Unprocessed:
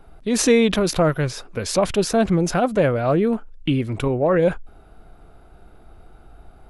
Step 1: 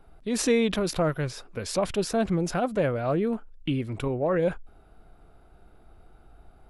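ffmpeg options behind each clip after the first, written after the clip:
-af "bandreject=f=6.3k:w=23,volume=-7dB"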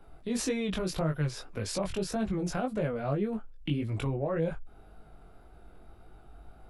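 -filter_complex "[0:a]acrossover=split=160[a][b];[b]acompressor=threshold=-37dB:ratio=2[c];[a][c]amix=inputs=2:normalize=0,flanger=delay=18.5:depth=3.3:speed=1.8,volume=4dB"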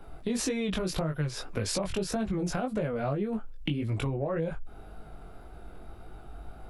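-af "acompressor=threshold=-34dB:ratio=6,volume=7dB"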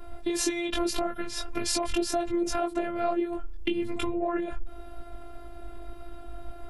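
-af "afftfilt=real='hypot(re,im)*cos(PI*b)':imag='0':win_size=512:overlap=0.75,volume=7.5dB"

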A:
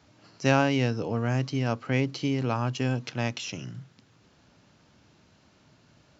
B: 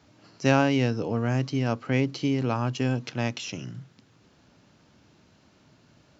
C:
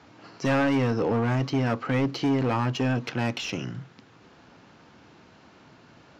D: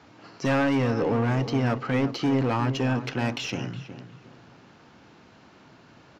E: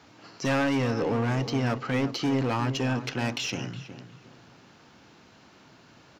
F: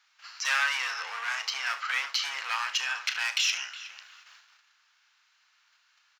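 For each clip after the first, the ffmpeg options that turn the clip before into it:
-af "equalizer=f=290:t=o:w=1.6:g=2.5"
-filter_complex "[0:a]asoftclip=type=hard:threshold=-24dB,bandreject=f=600:w=12,asplit=2[a][b];[b]highpass=f=720:p=1,volume=11dB,asoftclip=type=tanh:threshold=-21dB[c];[a][c]amix=inputs=2:normalize=0,lowpass=f=1.4k:p=1,volume=-6dB,volume=6.5dB"
-filter_complex "[0:a]asplit=2[a][b];[b]adelay=365,lowpass=f=2k:p=1,volume=-11dB,asplit=2[c][d];[d]adelay=365,lowpass=f=2k:p=1,volume=0.32,asplit=2[e][f];[f]adelay=365,lowpass=f=2k:p=1,volume=0.32[g];[a][c][e][g]amix=inputs=4:normalize=0"
-af "highshelf=f=3.7k:g=8.5,volume=-2.5dB"
-filter_complex "[0:a]agate=range=-14dB:threshold=-51dB:ratio=16:detection=peak,highpass=f=1.3k:w=0.5412,highpass=f=1.3k:w=1.3066,asplit=2[a][b];[b]aecho=0:1:35|74:0.266|0.188[c];[a][c]amix=inputs=2:normalize=0,volume=6dB"

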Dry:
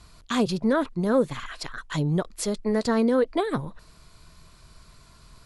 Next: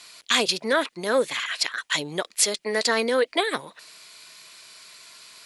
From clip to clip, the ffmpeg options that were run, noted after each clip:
-af "highpass=490,highshelf=f=1.6k:t=q:w=1.5:g=7.5,volume=4dB"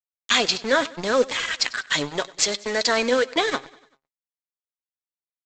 -af "aresample=16000,acrusher=bits=4:mix=0:aa=0.5,aresample=44100,flanger=delay=3:depth=4.4:regen=57:speed=0.69:shape=sinusoidal,aecho=1:1:97|194|291|388:0.0891|0.0472|0.025|0.0133,volume=6dB"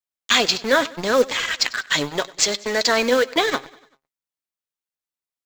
-af "acrusher=bits=6:mode=log:mix=0:aa=0.000001,volume=2.5dB"

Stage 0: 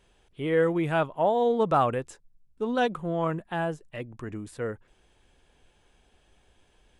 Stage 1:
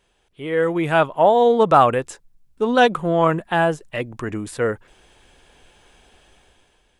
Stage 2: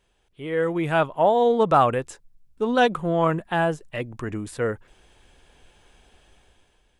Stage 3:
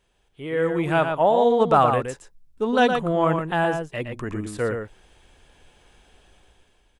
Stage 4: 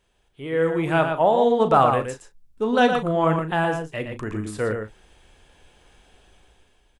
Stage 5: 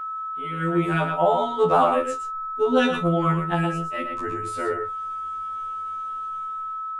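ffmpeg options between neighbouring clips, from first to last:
-af "lowshelf=f=330:g=-6,dynaudnorm=f=170:g=9:m=12dB,volume=1dB"
-af "lowshelf=f=150:g=5,volume=-4.5dB"
-filter_complex "[0:a]asplit=2[a][b];[b]adelay=116.6,volume=-6dB,highshelf=f=4k:g=-2.62[c];[a][c]amix=inputs=2:normalize=0"
-filter_complex "[0:a]asplit=2[a][b];[b]adelay=37,volume=-10.5dB[c];[a][c]amix=inputs=2:normalize=0"
-af "aeval=exprs='val(0)+0.0282*sin(2*PI*1300*n/s)':c=same,afftfilt=real='re*2*eq(mod(b,4),0)':imag='im*2*eq(mod(b,4),0)':win_size=2048:overlap=0.75,volume=1dB"

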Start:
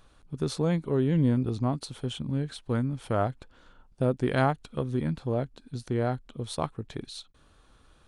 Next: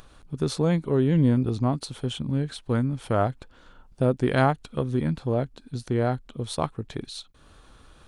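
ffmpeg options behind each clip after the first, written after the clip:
-af "acompressor=mode=upward:threshold=-48dB:ratio=2.5,volume=3.5dB"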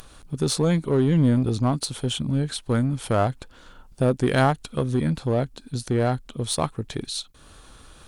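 -filter_complex "[0:a]aemphasis=mode=production:type=cd,asplit=2[a][b];[b]volume=25.5dB,asoftclip=hard,volume=-25.5dB,volume=-5dB[c];[a][c]amix=inputs=2:normalize=0"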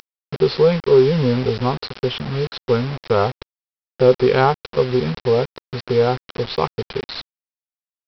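-af "superequalizer=6b=0.316:7b=3.98:9b=2.24:10b=1.78:12b=1.78,aresample=11025,acrusher=bits=4:mix=0:aa=0.000001,aresample=44100"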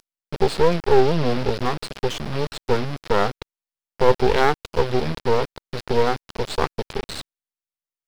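-af "aeval=exprs='max(val(0),0)':c=same,volume=1.5dB"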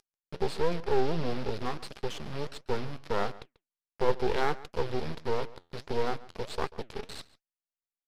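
-filter_complex "[0:a]flanger=delay=2.4:depth=9.4:regen=79:speed=1.5:shape=sinusoidal,asplit=2[a][b];[b]adelay=139.9,volume=-19dB,highshelf=f=4k:g=-3.15[c];[a][c]amix=inputs=2:normalize=0,aresample=32000,aresample=44100,volume=-6.5dB"

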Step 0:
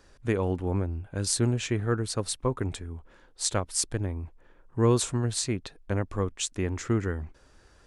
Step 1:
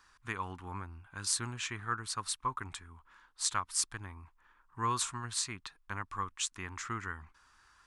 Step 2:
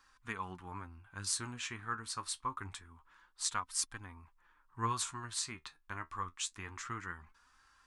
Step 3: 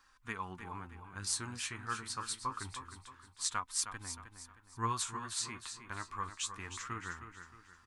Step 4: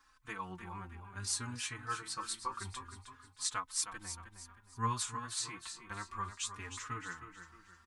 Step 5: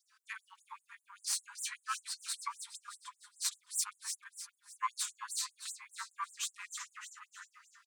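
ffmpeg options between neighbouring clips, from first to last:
-af "lowshelf=f=770:t=q:w=3:g=-11.5,volume=-4dB"
-af "flanger=delay=3.7:depth=9.5:regen=52:speed=0.26:shape=sinusoidal,volume=1dB"
-af "aecho=1:1:312|624|936|1248:0.335|0.131|0.0509|0.0199"
-filter_complex "[0:a]asplit=2[a][b];[b]adelay=4.2,afreqshift=0.57[c];[a][c]amix=inputs=2:normalize=1,volume=2.5dB"
-af "aeval=exprs='0.141*(cos(1*acos(clip(val(0)/0.141,-1,1)))-cos(1*PI/2))+0.0251*(cos(4*acos(clip(val(0)/0.141,-1,1)))-cos(4*PI/2))':c=same,aecho=1:1:307|614|921|1228:0.335|0.134|0.0536|0.0214,afftfilt=real='re*gte(b*sr/1024,800*pow(7100/800,0.5+0.5*sin(2*PI*5.1*pts/sr)))':imag='im*gte(b*sr/1024,800*pow(7100/800,0.5+0.5*sin(2*PI*5.1*pts/sr)))':win_size=1024:overlap=0.75,volume=1dB"

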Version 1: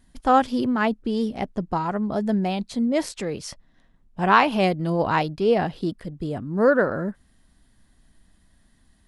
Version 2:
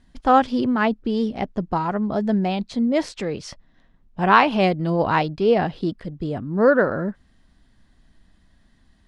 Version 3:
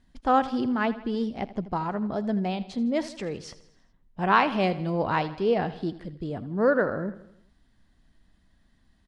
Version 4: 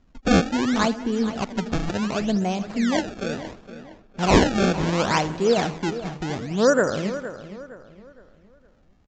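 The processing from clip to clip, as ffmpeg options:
-af "lowpass=5.5k,volume=2dB"
-af "aecho=1:1:81|162|243|324|405:0.158|0.0872|0.0479|0.0264|0.0145,volume=-6dB"
-filter_complex "[0:a]acrusher=samples=25:mix=1:aa=0.000001:lfo=1:lforange=40:lforate=0.7,asplit=2[a][b];[b]adelay=464,lowpass=f=3.7k:p=1,volume=-13dB,asplit=2[c][d];[d]adelay=464,lowpass=f=3.7k:p=1,volume=0.37,asplit=2[e][f];[f]adelay=464,lowpass=f=3.7k:p=1,volume=0.37,asplit=2[g][h];[h]adelay=464,lowpass=f=3.7k:p=1,volume=0.37[i];[a][c][e][g][i]amix=inputs=5:normalize=0,aresample=16000,aresample=44100,volume=4dB"

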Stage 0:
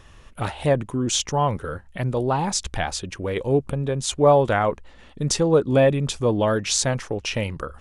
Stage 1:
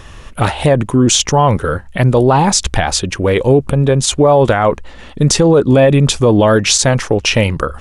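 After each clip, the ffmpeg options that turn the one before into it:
-af "alimiter=level_in=14.5dB:limit=-1dB:release=50:level=0:latency=1,volume=-1dB"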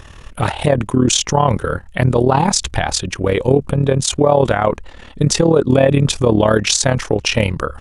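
-af "tremolo=f=37:d=0.75"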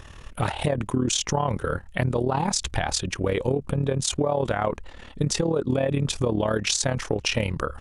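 -af "acompressor=threshold=-14dB:ratio=6,volume=-5.5dB"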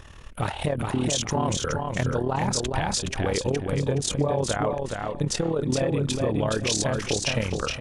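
-af "aecho=1:1:419|838|1257:0.631|0.158|0.0394,volume=-2dB"

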